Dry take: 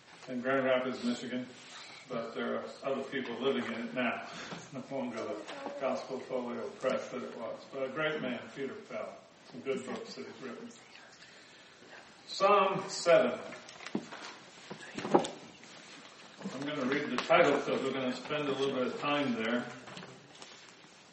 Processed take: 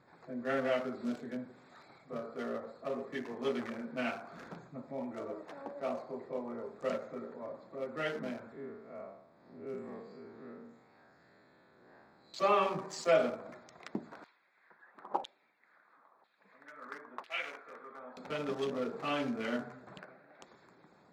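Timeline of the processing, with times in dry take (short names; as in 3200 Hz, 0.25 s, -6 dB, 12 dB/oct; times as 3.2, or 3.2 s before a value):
8.52–12.34 time blur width 0.122 s
14.24–18.17 LFO band-pass saw down 1 Hz 830–3200 Hz
19.98–20.42 speaker cabinet 260–4000 Hz, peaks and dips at 400 Hz -6 dB, 620 Hz +7 dB, 970 Hz -4 dB, 1500 Hz +8 dB, 2300 Hz +7 dB, 3400 Hz -6 dB
whole clip: Wiener smoothing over 15 samples; gain -2.5 dB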